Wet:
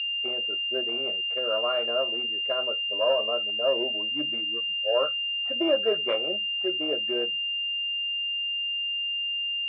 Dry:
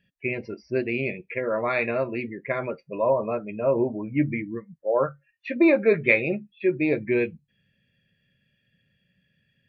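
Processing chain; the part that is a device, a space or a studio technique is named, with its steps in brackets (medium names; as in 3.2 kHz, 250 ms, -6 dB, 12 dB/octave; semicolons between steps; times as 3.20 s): toy sound module (decimation joined by straight lines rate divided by 6×; class-D stage that switches slowly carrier 2.8 kHz; cabinet simulation 570–4000 Hz, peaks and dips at 630 Hz +4 dB, 890 Hz -9 dB, 1.3 kHz +6 dB, 2 kHz -7 dB)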